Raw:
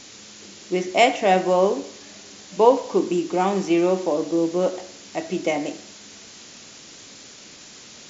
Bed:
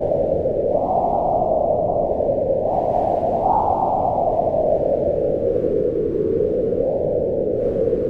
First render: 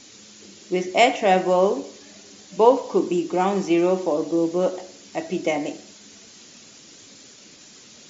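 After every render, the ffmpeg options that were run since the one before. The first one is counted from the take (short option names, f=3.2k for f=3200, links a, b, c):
-af "afftdn=nr=6:nf=-44"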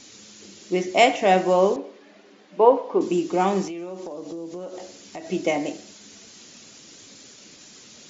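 -filter_complex "[0:a]asettb=1/sr,asplit=3[a][b][c];[a]atrim=end=1.764[d];[b]atrim=start=1.76:end=3.01,asetpts=PTS-STARTPTS,afade=t=in:d=0.004:c=qsin,afade=t=out:st=1.246:d=0.004:c=qsin,highpass=270,lowpass=2.1k[e];[c]atrim=start=3.006[f];[d][e]acrossfade=d=0.004:c1=hsin:c2=qsin[g];[g][f]acrossfade=d=0.004:c1=qsin:c2=hsin,asettb=1/sr,asplit=3[h][i][j];[h]atrim=end=3.674[k];[i]atrim=start=3.67:end=5.3,asetpts=PTS-STARTPTS,afade=t=in:d=0.004:c=qsin,afade=t=out:st=1.626:d=0.004:c=qsin,acompressor=threshold=-31dB:ratio=8:attack=3.2:release=140:knee=1:detection=peak[l];[j]atrim=start=5.296[m];[k][l]acrossfade=d=0.004:c1=hsin:c2=qsin[n];[n][m]acrossfade=d=0.004:c1=qsin:c2=hsin"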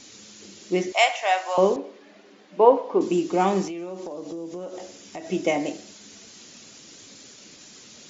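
-filter_complex "[0:a]asettb=1/sr,asplit=3[a][b][c];[a]atrim=end=0.924[d];[b]atrim=start=0.92:end=1.58,asetpts=PTS-STARTPTS,afade=t=in:d=0.004:c=qsin,afade=t=out:st=0.656:d=0.004:c=qsin,highpass=f=730:w=0.5412,highpass=f=730:w=1.3066[e];[c]atrim=start=1.576[f];[d][e]acrossfade=d=0.004:c1=hsin:c2=qsin[g];[g][f]acrossfade=d=0.004:c1=qsin:c2=hsin,asettb=1/sr,asplit=3[h][i][j];[h]atrim=end=4.304[k];[i]atrim=start=4.3:end=5.6,asetpts=PTS-STARTPTS,afade=t=in:d=0.004:c=qsin,afade=t=out:st=1.296:d=0.004:c=qsin,bandreject=f=4.3k:w=12[l];[j]atrim=start=5.596[m];[k][l]acrossfade=d=0.004:c1=hsin:c2=qsin[n];[n][m]acrossfade=d=0.004:c1=qsin:c2=hsin"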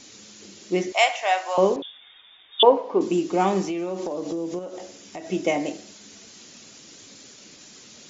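-filter_complex "[0:a]asettb=1/sr,asplit=3[a][b][c];[a]atrim=end=1.824[d];[b]atrim=start=1.82:end=2.63,asetpts=PTS-STARTPTS,afade=t=in:d=0.004:c=qsin,afade=t=out:st=0.806:d=0.004:c=qsin,lowpass=f=3.3k:t=q:w=0.5098,lowpass=f=3.3k:t=q:w=0.6013,lowpass=f=3.3k:t=q:w=0.9,lowpass=f=3.3k:t=q:w=2.563,afreqshift=-3900[e];[c]atrim=start=2.626[f];[d][e]acrossfade=d=0.004:c1=hsin:c2=qsin[g];[g][f]acrossfade=d=0.004:c1=qsin:c2=hsin,asplit=3[h][i][j];[h]atrim=end=3.682[k];[i]atrim=start=3.678:end=4.592,asetpts=PTS-STARTPTS,volume=5.5dB[l];[j]atrim=start=4.588[m];[k][l]acrossfade=d=0.004:c1=hsin:c2=hsin[n];[n][m]acrossfade=d=0.004:c1=hsin:c2=hsin"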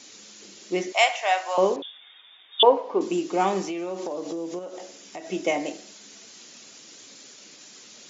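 -af "highpass=f=350:p=1"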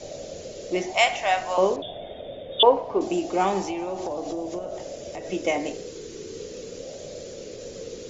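-filter_complex "[1:a]volume=-18.5dB[a];[0:a][a]amix=inputs=2:normalize=0"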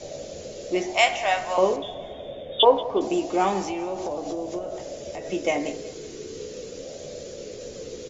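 -filter_complex "[0:a]asplit=2[a][b];[b]adelay=14,volume=-10.5dB[c];[a][c]amix=inputs=2:normalize=0,aecho=1:1:184|368|552|736:0.112|0.055|0.0269|0.0132"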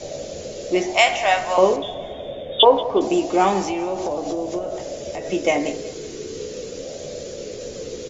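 -af "volume=5dB,alimiter=limit=-3dB:level=0:latency=1"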